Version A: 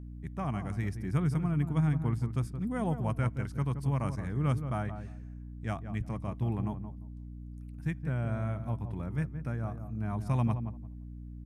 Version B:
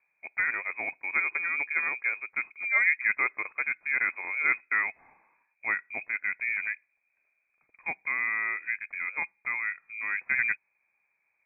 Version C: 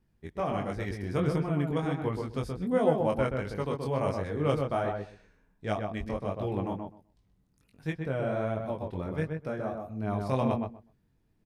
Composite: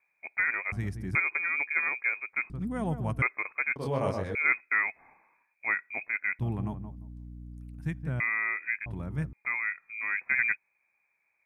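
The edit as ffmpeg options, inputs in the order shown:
-filter_complex "[0:a]asplit=4[s0][s1][s2][s3];[1:a]asplit=6[s4][s5][s6][s7][s8][s9];[s4]atrim=end=0.722[s10];[s0]atrim=start=0.718:end=1.152[s11];[s5]atrim=start=1.148:end=2.502[s12];[s1]atrim=start=2.498:end=3.222[s13];[s6]atrim=start=3.218:end=3.762[s14];[2:a]atrim=start=3.758:end=4.352[s15];[s7]atrim=start=4.348:end=6.392[s16];[s2]atrim=start=6.388:end=8.202[s17];[s8]atrim=start=8.198:end=8.862[s18];[s3]atrim=start=8.858:end=9.332[s19];[s9]atrim=start=9.328[s20];[s10][s11]acrossfade=d=0.004:c1=hsin:c2=hsin[s21];[s21][s12]acrossfade=d=0.004:c1=hsin:c2=hsin[s22];[s22][s13]acrossfade=d=0.004:c1=hsin:c2=hsin[s23];[s23][s14]acrossfade=d=0.004:c1=hsin:c2=hsin[s24];[s24][s15]acrossfade=d=0.004:c1=hsin:c2=hsin[s25];[s25][s16]acrossfade=d=0.004:c1=hsin:c2=hsin[s26];[s26][s17]acrossfade=d=0.004:c1=hsin:c2=hsin[s27];[s27][s18]acrossfade=d=0.004:c1=hsin:c2=hsin[s28];[s28][s19]acrossfade=d=0.004:c1=hsin:c2=hsin[s29];[s29][s20]acrossfade=d=0.004:c1=hsin:c2=hsin"

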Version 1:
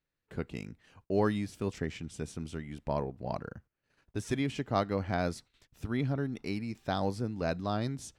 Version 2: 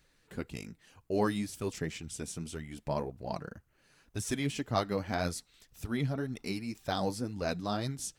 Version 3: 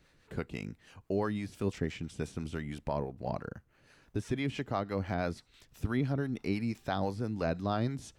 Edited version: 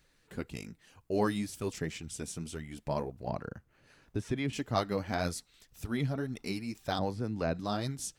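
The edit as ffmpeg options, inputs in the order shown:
-filter_complex "[2:a]asplit=2[s0][s1];[1:a]asplit=3[s2][s3][s4];[s2]atrim=end=3.272[s5];[s0]atrim=start=3.268:end=4.532[s6];[s3]atrim=start=4.528:end=6.992[s7];[s1]atrim=start=6.988:end=7.592[s8];[s4]atrim=start=7.588[s9];[s5][s6]acrossfade=d=0.004:c1=hsin:c2=hsin[s10];[s10][s7]acrossfade=d=0.004:c1=hsin:c2=hsin[s11];[s11][s8]acrossfade=d=0.004:c1=hsin:c2=hsin[s12];[s12][s9]acrossfade=d=0.004:c1=hsin:c2=hsin"

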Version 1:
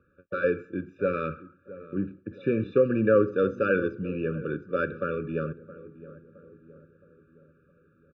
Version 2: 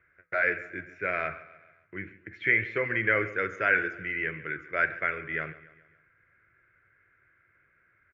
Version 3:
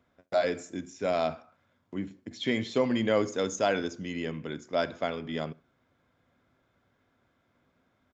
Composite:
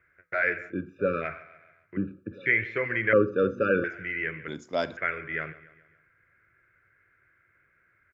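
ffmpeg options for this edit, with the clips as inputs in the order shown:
-filter_complex "[0:a]asplit=3[s0][s1][s2];[1:a]asplit=5[s3][s4][s5][s6][s7];[s3]atrim=end=0.74[s8];[s0]atrim=start=0.68:end=1.26[s9];[s4]atrim=start=1.2:end=1.972[s10];[s1]atrim=start=1.968:end=2.462[s11];[s5]atrim=start=2.458:end=3.132[s12];[s2]atrim=start=3.128:end=3.842[s13];[s6]atrim=start=3.838:end=4.482[s14];[2:a]atrim=start=4.478:end=4.972[s15];[s7]atrim=start=4.968[s16];[s8][s9]acrossfade=d=0.06:c1=tri:c2=tri[s17];[s17][s10]acrossfade=d=0.06:c1=tri:c2=tri[s18];[s18][s11]acrossfade=d=0.004:c1=hsin:c2=hsin[s19];[s19][s12]acrossfade=d=0.004:c1=hsin:c2=hsin[s20];[s20][s13]acrossfade=d=0.004:c1=hsin:c2=hsin[s21];[s21][s14]acrossfade=d=0.004:c1=hsin:c2=hsin[s22];[s22][s15]acrossfade=d=0.004:c1=hsin:c2=hsin[s23];[s23][s16]acrossfade=d=0.004:c1=hsin:c2=hsin"

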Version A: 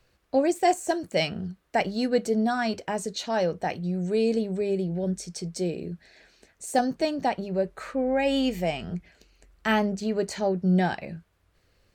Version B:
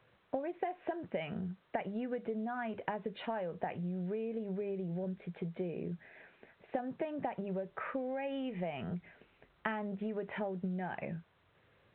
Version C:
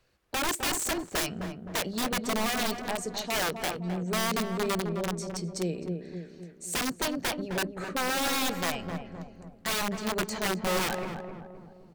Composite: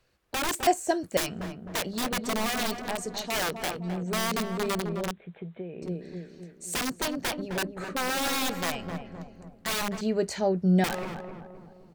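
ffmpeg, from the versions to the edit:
-filter_complex "[0:a]asplit=2[s0][s1];[2:a]asplit=4[s2][s3][s4][s5];[s2]atrim=end=0.672[s6];[s0]atrim=start=0.668:end=1.172[s7];[s3]atrim=start=1.168:end=5.112[s8];[1:a]atrim=start=5.108:end=5.822[s9];[s4]atrim=start=5.818:end=10.012[s10];[s1]atrim=start=10.008:end=10.842[s11];[s5]atrim=start=10.838[s12];[s6][s7]acrossfade=d=0.004:c1=hsin:c2=hsin[s13];[s13][s8]acrossfade=d=0.004:c1=hsin:c2=hsin[s14];[s14][s9]acrossfade=d=0.004:c1=hsin:c2=hsin[s15];[s15][s10]acrossfade=d=0.004:c1=hsin:c2=hsin[s16];[s16][s11]acrossfade=d=0.004:c1=hsin:c2=hsin[s17];[s17][s12]acrossfade=d=0.004:c1=hsin:c2=hsin"

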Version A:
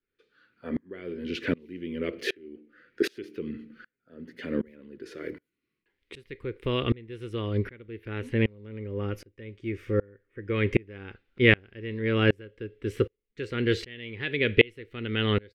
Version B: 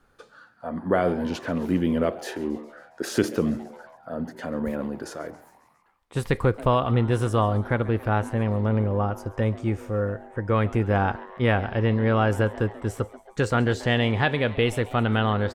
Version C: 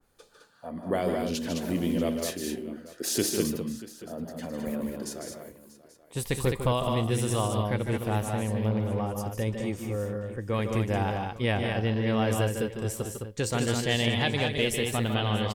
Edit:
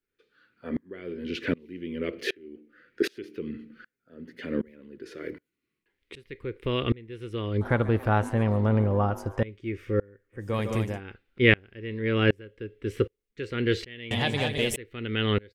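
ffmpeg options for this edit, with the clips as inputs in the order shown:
-filter_complex "[2:a]asplit=2[s0][s1];[0:a]asplit=4[s2][s3][s4][s5];[s2]atrim=end=7.612[s6];[1:a]atrim=start=7.608:end=9.432[s7];[s3]atrim=start=9.428:end=10.48[s8];[s0]atrim=start=10.32:end=11.01[s9];[s4]atrim=start=10.85:end=14.112[s10];[s1]atrim=start=14.108:end=14.762[s11];[s5]atrim=start=14.758[s12];[s6][s7]acrossfade=d=0.004:c1=hsin:c2=hsin[s13];[s13][s8]acrossfade=d=0.004:c1=hsin:c2=hsin[s14];[s14][s9]acrossfade=d=0.16:c1=tri:c2=tri[s15];[s15][s10]acrossfade=d=0.16:c1=tri:c2=tri[s16];[s16][s11]acrossfade=d=0.004:c1=hsin:c2=hsin[s17];[s17][s12]acrossfade=d=0.004:c1=hsin:c2=hsin"

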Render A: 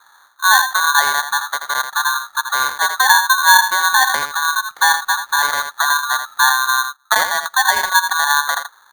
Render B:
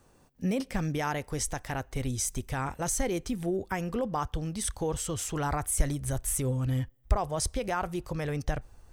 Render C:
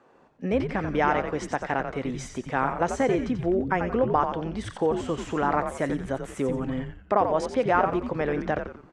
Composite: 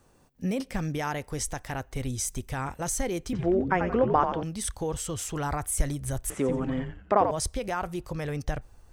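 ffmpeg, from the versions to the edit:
-filter_complex "[2:a]asplit=2[s0][s1];[1:a]asplit=3[s2][s3][s4];[s2]atrim=end=3.332[s5];[s0]atrim=start=3.328:end=4.432[s6];[s3]atrim=start=4.428:end=6.302[s7];[s1]atrim=start=6.298:end=7.312[s8];[s4]atrim=start=7.308[s9];[s5][s6]acrossfade=d=0.004:c1=hsin:c2=hsin[s10];[s10][s7]acrossfade=d=0.004:c1=hsin:c2=hsin[s11];[s11][s8]acrossfade=d=0.004:c1=hsin:c2=hsin[s12];[s12][s9]acrossfade=d=0.004:c1=hsin:c2=hsin"

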